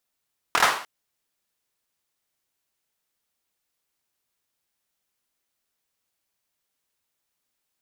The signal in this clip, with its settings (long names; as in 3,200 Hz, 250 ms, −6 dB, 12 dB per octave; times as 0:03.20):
synth clap length 0.30 s, apart 25 ms, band 1,100 Hz, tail 0.49 s